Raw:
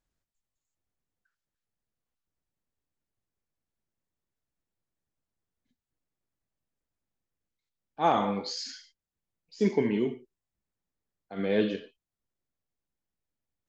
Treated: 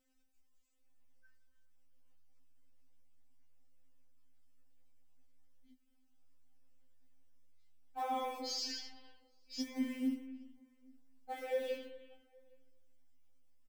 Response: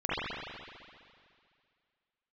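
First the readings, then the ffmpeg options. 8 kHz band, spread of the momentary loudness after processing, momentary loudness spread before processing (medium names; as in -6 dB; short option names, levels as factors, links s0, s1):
no reading, 15 LU, 15 LU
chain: -filter_complex "[0:a]acrossover=split=160|2600[s0][s1][s2];[s0]dynaudnorm=f=320:g=5:m=1.88[s3];[s3][s1][s2]amix=inputs=3:normalize=0,alimiter=limit=0.0708:level=0:latency=1:release=76,acompressor=threshold=0.00708:ratio=3,acrusher=bits=6:mode=log:mix=0:aa=0.000001,asplit=2[s4][s5];[s5]adelay=19,volume=0.447[s6];[s4][s6]amix=inputs=2:normalize=0,asplit=2[s7][s8];[s8]adelay=816.3,volume=0.0398,highshelf=f=4000:g=-18.4[s9];[s7][s9]amix=inputs=2:normalize=0,asplit=2[s10][s11];[1:a]atrim=start_sample=2205,afade=t=out:st=0.33:d=0.01,atrim=end_sample=14994,adelay=126[s12];[s11][s12]afir=irnorm=-1:irlink=0,volume=0.0708[s13];[s10][s13]amix=inputs=2:normalize=0,afftfilt=real='re*3.46*eq(mod(b,12),0)':imag='im*3.46*eq(mod(b,12),0)':win_size=2048:overlap=0.75,volume=2.24"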